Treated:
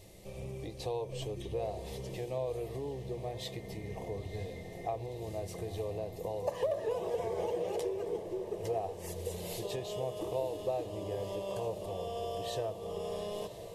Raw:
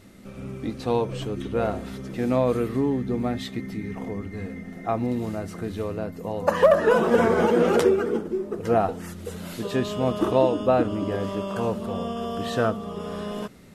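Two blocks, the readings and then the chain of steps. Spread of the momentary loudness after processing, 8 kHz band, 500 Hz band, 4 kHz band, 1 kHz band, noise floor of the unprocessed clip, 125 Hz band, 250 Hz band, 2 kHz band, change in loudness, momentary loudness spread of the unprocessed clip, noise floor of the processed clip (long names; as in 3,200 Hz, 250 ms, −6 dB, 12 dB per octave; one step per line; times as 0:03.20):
7 LU, −5.5 dB, −12.0 dB, −8.0 dB, −14.0 dB, −40 dBFS, −10.5 dB, −19.0 dB, −19.0 dB, −13.0 dB, 14 LU, −46 dBFS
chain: high-shelf EQ 11,000 Hz +3 dB
downward compressor 4 to 1, threshold −32 dBFS, peak gain reduction 17 dB
phaser with its sweep stopped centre 580 Hz, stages 4
on a send: feedback delay with all-pass diffusion 983 ms, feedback 71%, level −12.5 dB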